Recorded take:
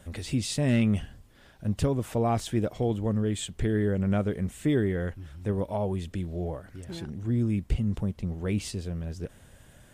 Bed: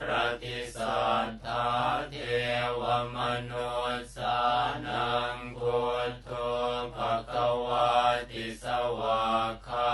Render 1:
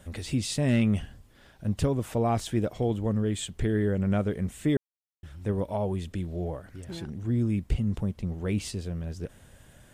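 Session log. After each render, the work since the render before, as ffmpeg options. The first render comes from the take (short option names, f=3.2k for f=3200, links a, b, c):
-filter_complex "[0:a]asplit=3[a][b][c];[a]atrim=end=4.77,asetpts=PTS-STARTPTS,afade=t=out:st=4.766:d=0.004:c=hsin[d];[b]atrim=start=4.77:end=5.23,asetpts=PTS-STARTPTS,volume=0[e];[c]atrim=start=5.23,asetpts=PTS-STARTPTS,afade=t=in:d=0.004:c=hsin[f];[d][e][f]concat=n=3:v=0:a=1"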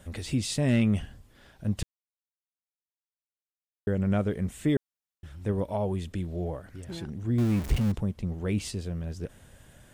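-filter_complex "[0:a]asettb=1/sr,asplit=3[a][b][c];[a]atrim=end=7.384[d];[b]atrim=start=7.38:end=7.92,asetpts=PTS-STARTPTS,afade=t=in:d=0.004:c=qsin,afade=t=out:st=0.536:d=0.004:c=qsin,aeval=exprs='val(0)+0.5*0.0282*sgn(val(0))':c=same[e];[c]atrim=start=7.916[f];[d][e]acrossfade=d=0.004:c1=hsin:c2=qsin[g];[g][f]acrossfade=d=0.004:c1=qsin:c2=hsin,asplit=3[h][i][j];[h]atrim=end=1.83,asetpts=PTS-STARTPTS,afade=t=out:st=1.826:d=0.004:c=hsin[k];[i]atrim=start=1.83:end=3.87,asetpts=PTS-STARTPTS,volume=0[l];[j]atrim=start=3.87,asetpts=PTS-STARTPTS,afade=t=in:d=0.004:c=hsin[m];[k][l][m]concat=n=3:v=0:a=1"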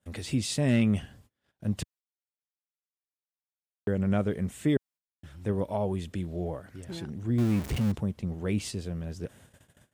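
-af "agate=range=-28dB:threshold=-51dB:ratio=16:detection=peak,highpass=85"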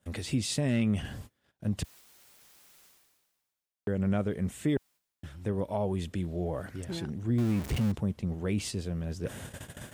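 -af "areverse,acompressor=mode=upward:threshold=-29dB:ratio=2.5,areverse,alimiter=limit=-19.5dB:level=0:latency=1:release=185"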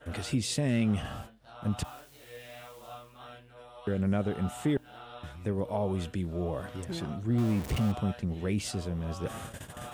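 -filter_complex "[1:a]volume=-18dB[a];[0:a][a]amix=inputs=2:normalize=0"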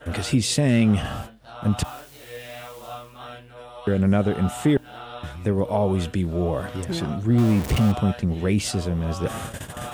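-af "volume=9dB"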